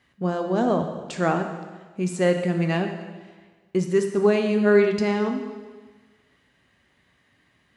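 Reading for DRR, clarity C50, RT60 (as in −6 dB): 4.5 dB, 7.0 dB, 1.4 s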